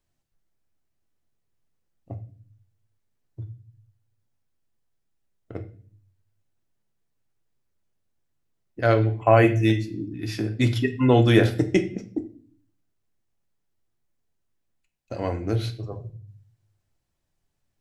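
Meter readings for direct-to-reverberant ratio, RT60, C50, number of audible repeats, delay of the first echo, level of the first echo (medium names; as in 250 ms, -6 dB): 6.0 dB, 0.45 s, 13.5 dB, no echo, no echo, no echo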